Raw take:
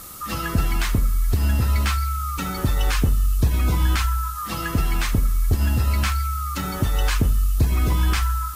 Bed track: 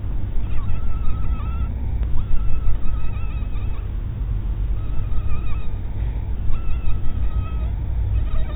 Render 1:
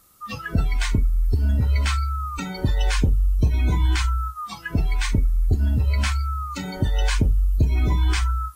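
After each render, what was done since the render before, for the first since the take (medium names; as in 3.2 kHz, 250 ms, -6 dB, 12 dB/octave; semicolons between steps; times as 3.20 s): noise print and reduce 18 dB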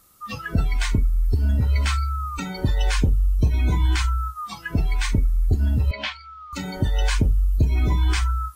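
5.91–6.53 s: cabinet simulation 330–4300 Hz, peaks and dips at 600 Hz +7 dB, 1.3 kHz -9 dB, 3.2 kHz +5 dB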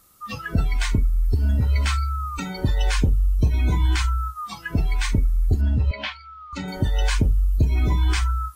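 5.61–6.68 s: distance through air 83 m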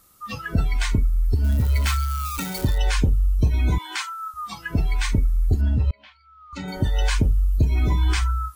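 1.44–2.78 s: zero-crossing glitches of -22.5 dBFS; 3.78–4.34 s: high-pass 450 Hz 24 dB/octave; 5.91–6.70 s: fade in quadratic, from -22.5 dB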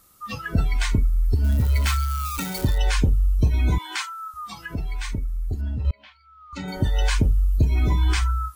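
4.05–5.85 s: compression 1.5:1, threshold -36 dBFS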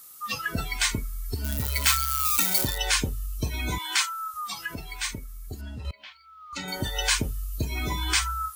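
tilt EQ +3 dB/octave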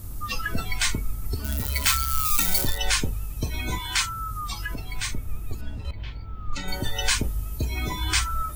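add bed track -11.5 dB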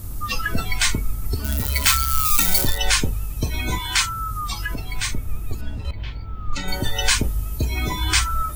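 trim +4.5 dB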